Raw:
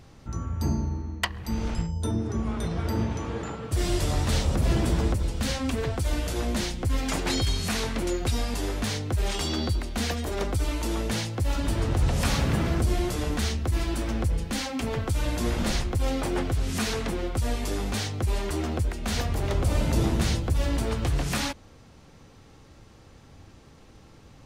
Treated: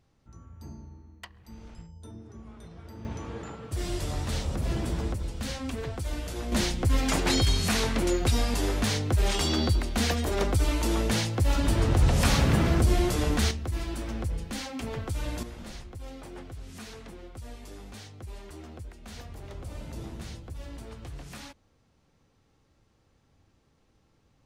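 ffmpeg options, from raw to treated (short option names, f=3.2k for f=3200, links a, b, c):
-af "asetnsamples=n=441:p=0,asendcmd='3.05 volume volume -6dB;6.52 volume volume 2dB;13.51 volume volume -5.5dB;15.43 volume volume -15.5dB',volume=-17.5dB"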